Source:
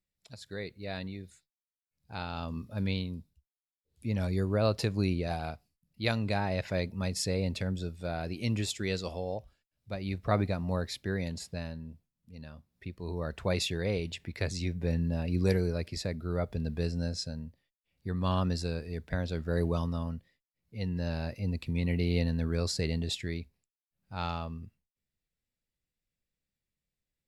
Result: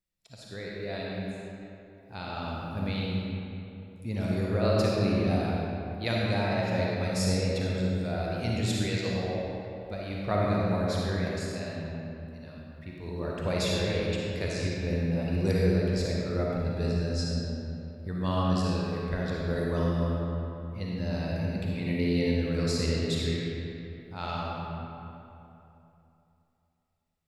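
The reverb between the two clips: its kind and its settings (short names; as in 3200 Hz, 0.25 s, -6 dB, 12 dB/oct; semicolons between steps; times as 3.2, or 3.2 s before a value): digital reverb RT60 3 s, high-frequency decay 0.6×, pre-delay 15 ms, DRR -4.5 dB; gain -2 dB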